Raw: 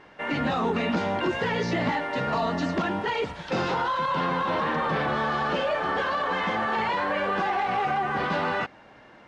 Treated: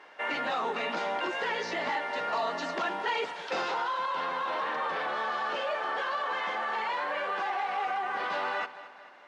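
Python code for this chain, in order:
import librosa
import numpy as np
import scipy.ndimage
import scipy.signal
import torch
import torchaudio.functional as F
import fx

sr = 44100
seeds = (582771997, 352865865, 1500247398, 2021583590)

p1 = scipy.signal.sosfilt(scipy.signal.butter(2, 530.0, 'highpass', fs=sr, output='sos'), x)
p2 = fx.rider(p1, sr, range_db=10, speed_s=0.5)
p3 = p2 + fx.echo_feedback(p2, sr, ms=222, feedback_pct=52, wet_db=-15.5, dry=0)
y = p3 * 10.0 ** (-3.5 / 20.0)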